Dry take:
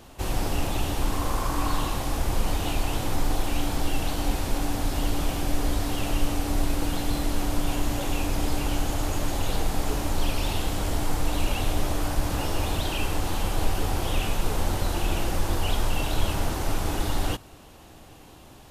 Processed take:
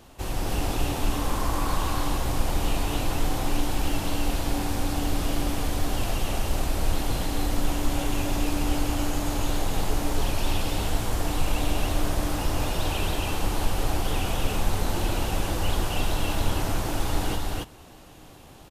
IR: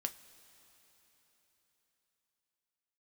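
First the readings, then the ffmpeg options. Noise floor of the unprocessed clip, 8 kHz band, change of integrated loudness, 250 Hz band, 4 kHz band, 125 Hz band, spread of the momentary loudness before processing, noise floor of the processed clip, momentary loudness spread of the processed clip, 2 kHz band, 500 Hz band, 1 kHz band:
-48 dBFS, +0.5 dB, 0.0 dB, +0.5 dB, +0.5 dB, 0.0 dB, 1 LU, -48 dBFS, 1 LU, +0.5 dB, +0.5 dB, +0.5 dB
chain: -af "aecho=1:1:177.8|277:0.355|0.891,volume=-2.5dB"

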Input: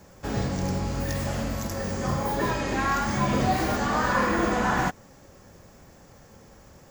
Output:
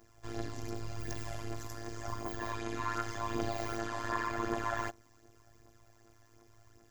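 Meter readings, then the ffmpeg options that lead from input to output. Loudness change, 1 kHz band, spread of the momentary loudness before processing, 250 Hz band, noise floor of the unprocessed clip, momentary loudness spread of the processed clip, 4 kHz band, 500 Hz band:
-12.0 dB, -11.5 dB, 7 LU, -13.5 dB, -52 dBFS, 8 LU, -11.5 dB, -11.5 dB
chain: -af "afftfilt=real='hypot(re,im)*cos(PI*b)':imag='0':win_size=512:overlap=0.75,aphaser=in_gain=1:out_gain=1:delay=4.1:decay=0.5:speed=0.88:type=triangular,tremolo=f=110:d=0.857,volume=-5.5dB"

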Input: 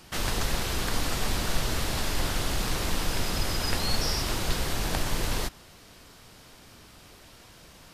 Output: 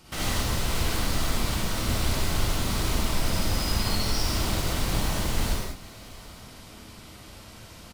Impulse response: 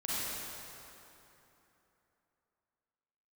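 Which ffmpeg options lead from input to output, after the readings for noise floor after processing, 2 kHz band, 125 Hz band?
-46 dBFS, 0.0 dB, +4.0 dB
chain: -filter_complex "[0:a]equalizer=f=71:w=0.56:g=4.5,bandreject=f=1.7k:w=11,acompressor=threshold=-31dB:ratio=4,asplit=2[a][b];[b]acrusher=bits=5:mix=0:aa=0.000001,volume=-6dB[c];[a][c]amix=inputs=2:normalize=0,aecho=1:1:770:0.0841[d];[1:a]atrim=start_sample=2205,afade=t=out:st=0.32:d=0.01,atrim=end_sample=14553[e];[d][e]afir=irnorm=-1:irlink=0"

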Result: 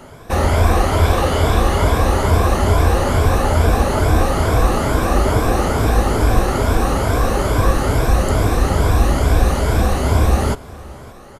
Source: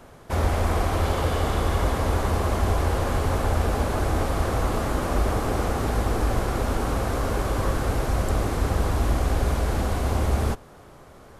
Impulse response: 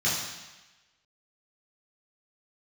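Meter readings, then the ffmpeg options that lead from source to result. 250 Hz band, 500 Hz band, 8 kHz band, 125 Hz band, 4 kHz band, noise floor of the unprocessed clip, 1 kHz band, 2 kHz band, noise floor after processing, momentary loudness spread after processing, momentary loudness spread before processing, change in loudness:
+8.0 dB, +8.5 dB, +8.5 dB, +8.5 dB, +8.5 dB, -47 dBFS, +8.5 dB, +8.5 dB, -38 dBFS, 2 LU, 2 LU, +8.5 dB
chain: -filter_complex "[0:a]afftfilt=real='re*pow(10,9/40*sin(2*PI*(1.7*log(max(b,1)*sr/1024/100)/log(2)-(2.3)*(pts-256)/sr)))':imag='im*pow(10,9/40*sin(2*PI*(1.7*log(max(b,1)*sr/1024/100)/log(2)-(2.3)*(pts-256)/sr)))':win_size=1024:overlap=0.75,asplit=2[a][b];[b]aecho=0:1:571:0.0794[c];[a][c]amix=inputs=2:normalize=0,volume=7.5dB"

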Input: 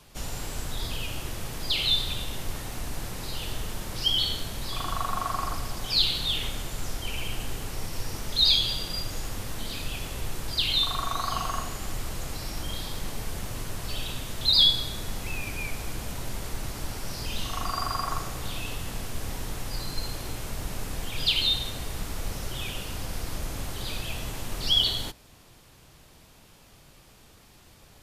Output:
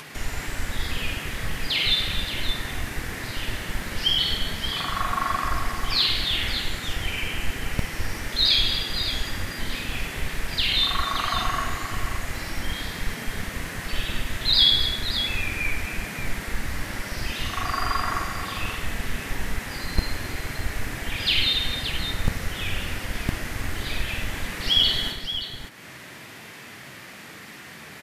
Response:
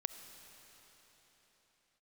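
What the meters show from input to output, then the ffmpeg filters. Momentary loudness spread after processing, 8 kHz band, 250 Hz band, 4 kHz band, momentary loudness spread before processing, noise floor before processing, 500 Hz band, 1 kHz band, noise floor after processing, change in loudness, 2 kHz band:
12 LU, 0.0 dB, +4.5 dB, +3.0 dB, 14 LU, -54 dBFS, +2.5 dB, +4.5 dB, -42 dBFS, +3.5 dB, +10.0 dB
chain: -filter_complex "[0:a]equalizer=f=1.9k:w=1.5:g=14.5,flanger=delay=2.5:depth=2.2:regen=-71:speed=0.34:shape=triangular,aecho=1:1:46|101|104|204|264|575:0.596|0.188|0.266|0.141|0.251|0.376,acrossover=split=120[a][b];[a]acrusher=bits=5:dc=4:mix=0:aa=0.000001[c];[c][b]amix=inputs=2:normalize=0,acompressor=mode=upward:threshold=-34dB:ratio=2.5,lowshelf=f=290:g=7.5,volume=1.5dB"

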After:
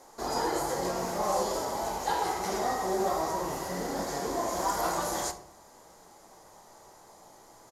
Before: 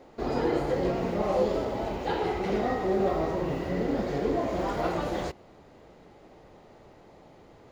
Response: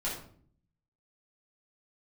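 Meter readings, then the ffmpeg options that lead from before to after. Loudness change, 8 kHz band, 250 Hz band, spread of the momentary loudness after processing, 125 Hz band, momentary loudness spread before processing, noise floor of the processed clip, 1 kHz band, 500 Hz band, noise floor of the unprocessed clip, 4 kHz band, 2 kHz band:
-2.0 dB, n/a, -7.0 dB, 5 LU, -8.5 dB, 5 LU, -55 dBFS, +2.5 dB, -4.5 dB, -54 dBFS, +4.5 dB, -0.5 dB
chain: -filter_complex "[0:a]bass=f=250:g=-4,treble=f=4k:g=5,aexciter=amount=8.1:drive=7.2:freq=3.7k,equalizer=f=1k:t=o:w=1:g=11,equalizer=f=2k:t=o:w=1:g=6,equalizer=f=4k:t=o:w=1:g=-10,aresample=32000,aresample=44100,asplit=2[a][b];[1:a]atrim=start_sample=2205,asetrate=48510,aresample=44100[c];[b][c]afir=irnorm=-1:irlink=0,volume=-9.5dB[d];[a][d]amix=inputs=2:normalize=0,volume=-8.5dB"

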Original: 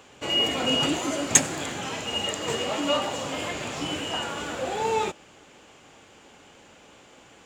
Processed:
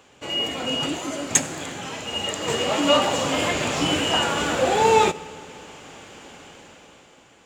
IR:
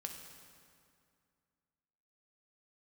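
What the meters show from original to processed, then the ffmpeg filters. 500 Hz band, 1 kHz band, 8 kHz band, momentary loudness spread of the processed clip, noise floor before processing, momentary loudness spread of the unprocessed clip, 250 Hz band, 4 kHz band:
+6.5 dB, +7.0 dB, 0.0 dB, 20 LU, -53 dBFS, 11 LU, +4.0 dB, +2.5 dB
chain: -filter_complex "[0:a]dynaudnorm=f=210:g=11:m=13dB,asplit=2[a][b];[1:a]atrim=start_sample=2205[c];[b][c]afir=irnorm=-1:irlink=0,volume=-8.5dB[d];[a][d]amix=inputs=2:normalize=0,volume=-4dB"

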